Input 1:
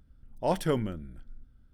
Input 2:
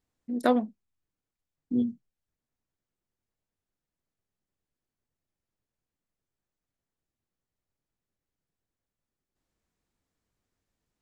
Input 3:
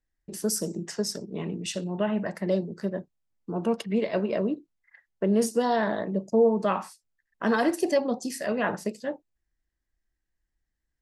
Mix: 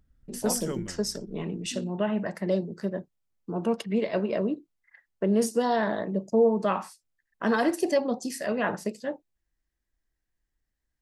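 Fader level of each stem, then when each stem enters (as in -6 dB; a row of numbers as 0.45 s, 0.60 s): -7.5 dB, -12.5 dB, -0.5 dB; 0.00 s, 0.00 s, 0.00 s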